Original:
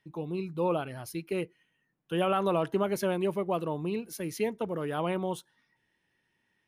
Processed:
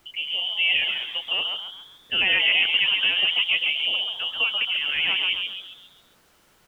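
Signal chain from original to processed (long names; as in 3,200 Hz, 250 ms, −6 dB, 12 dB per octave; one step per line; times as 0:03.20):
voice inversion scrambler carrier 3,200 Hz
background noise pink −66 dBFS
low-shelf EQ 160 Hz −8 dB
on a send: echo with shifted repeats 135 ms, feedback 45%, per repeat +130 Hz, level −4 dB
on the sum: level +5.5 dB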